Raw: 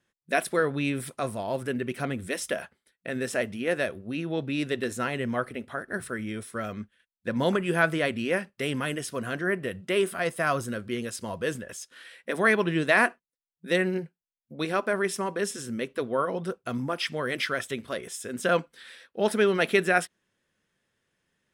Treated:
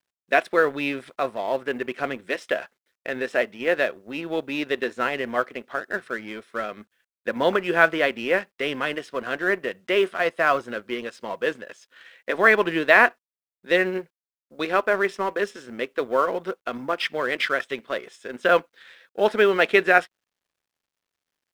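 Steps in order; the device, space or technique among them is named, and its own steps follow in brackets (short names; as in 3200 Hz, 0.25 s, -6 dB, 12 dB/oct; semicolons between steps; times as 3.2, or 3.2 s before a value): phone line with mismatched companding (BPF 360–3400 Hz; G.711 law mismatch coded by A); gain +7 dB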